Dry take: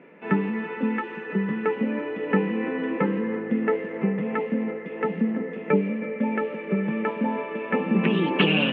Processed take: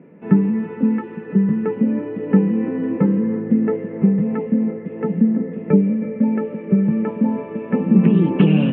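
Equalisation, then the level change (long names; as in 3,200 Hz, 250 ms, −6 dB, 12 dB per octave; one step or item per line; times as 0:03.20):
spectral tilt −4 dB per octave
low-shelf EQ 190 Hz +9.5 dB
−4.0 dB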